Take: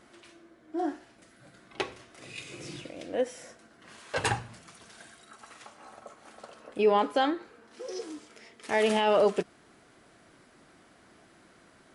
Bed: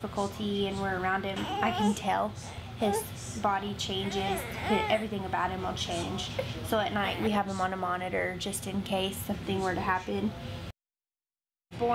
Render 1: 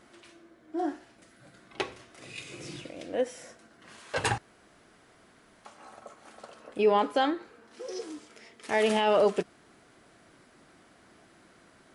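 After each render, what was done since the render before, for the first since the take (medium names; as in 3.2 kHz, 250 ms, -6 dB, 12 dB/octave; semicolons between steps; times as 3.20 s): 4.38–5.65 s: room tone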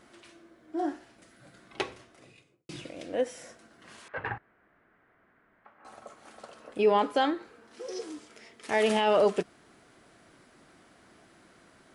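1.81–2.69 s: studio fade out; 4.08–5.85 s: four-pole ladder low-pass 2.2 kHz, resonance 40%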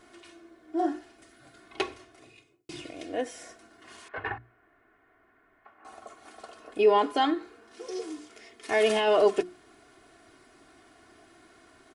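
hum notches 60/120/180/240/300/360 Hz; comb 2.8 ms, depth 66%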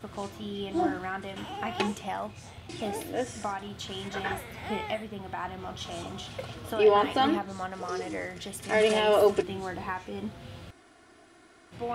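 add bed -5.5 dB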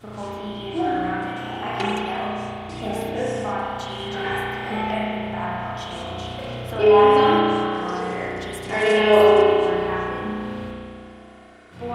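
spring tank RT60 2.4 s, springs 33 ms, chirp 70 ms, DRR -7.5 dB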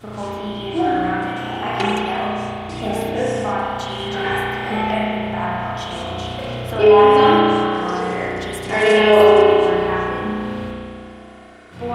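trim +4.5 dB; peak limiter -2 dBFS, peak gain reduction 3 dB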